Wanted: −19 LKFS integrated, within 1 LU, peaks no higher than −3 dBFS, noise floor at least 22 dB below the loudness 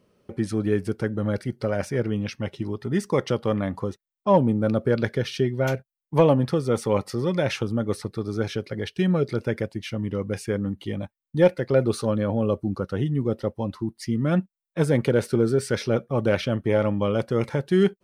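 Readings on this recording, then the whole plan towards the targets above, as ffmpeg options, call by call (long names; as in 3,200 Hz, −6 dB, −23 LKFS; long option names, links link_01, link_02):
integrated loudness −25.0 LKFS; sample peak −6.5 dBFS; target loudness −19.0 LKFS
→ -af "volume=6dB,alimiter=limit=-3dB:level=0:latency=1"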